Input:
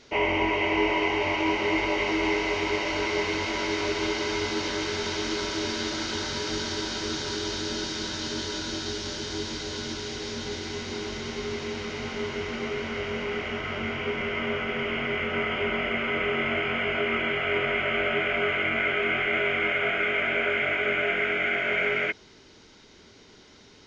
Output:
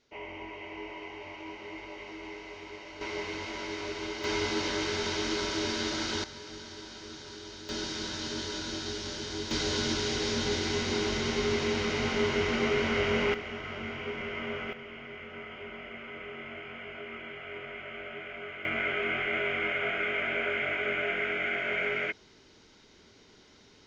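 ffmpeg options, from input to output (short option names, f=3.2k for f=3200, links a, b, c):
-af "asetnsamples=n=441:p=0,asendcmd='3.01 volume volume -9dB;4.24 volume volume -2dB;6.24 volume volume -14dB;7.69 volume volume -4dB;9.51 volume volume 3.5dB;13.34 volume volume -7dB;14.73 volume volume -15.5dB;18.65 volume volume -5dB',volume=-17.5dB"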